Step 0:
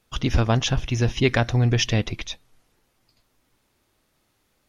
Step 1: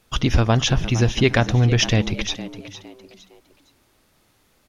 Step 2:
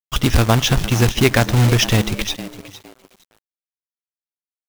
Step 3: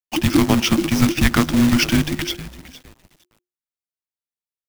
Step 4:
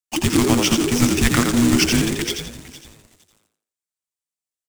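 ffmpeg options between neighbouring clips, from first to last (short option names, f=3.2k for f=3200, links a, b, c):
-filter_complex "[0:a]asplit=2[a][b];[b]acompressor=threshold=-27dB:ratio=6,volume=2dB[c];[a][c]amix=inputs=2:normalize=0,asplit=4[d][e][f][g];[e]adelay=460,afreqshift=88,volume=-14.5dB[h];[f]adelay=920,afreqshift=176,volume=-24.1dB[i];[g]adelay=1380,afreqshift=264,volume=-33.8dB[j];[d][h][i][j]amix=inputs=4:normalize=0"
-af "acrusher=bits=2:mode=log:mix=0:aa=0.000001,aeval=exprs='sgn(val(0))*max(abs(val(0))-0.00631,0)':c=same,volume=2.5dB"
-filter_complex "[0:a]afreqshift=-360,asplit=2[a][b];[b]acrusher=bits=4:dc=4:mix=0:aa=0.000001,volume=-11.5dB[c];[a][c]amix=inputs=2:normalize=0,volume=-3.5dB"
-filter_complex "[0:a]equalizer=f=7.8k:w=1.4:g=9,asplit=2[a][b];[b]asplit=4[c][d][e][f];[c]adelay=85,afreqshift=74,volume=-5dB[g];[d]adelay=170,afreqshift=148,volume=-14.9dB[h];[e]adelay=255,afreqshift=222,volume=-24.8dB[i];[f]adelay=340,afreqshift=296,volume=-34.7dB[j];[g][h][i][j]amix=inputs=4:normalize=0[k];[a][k]amix=inputs=2:normalize=0,volume=-2dB"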